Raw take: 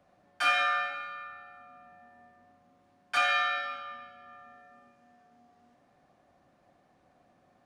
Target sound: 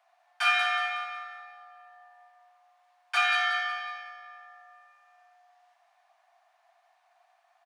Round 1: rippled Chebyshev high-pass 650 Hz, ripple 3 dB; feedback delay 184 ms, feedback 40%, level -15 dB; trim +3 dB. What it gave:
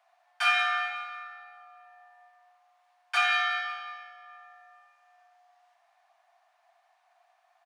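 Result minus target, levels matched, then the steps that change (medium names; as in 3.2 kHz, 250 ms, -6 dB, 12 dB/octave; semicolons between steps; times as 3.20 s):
echo-to-direct -8 dB
change: feedback delay 184 ms, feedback 40%, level -7 dB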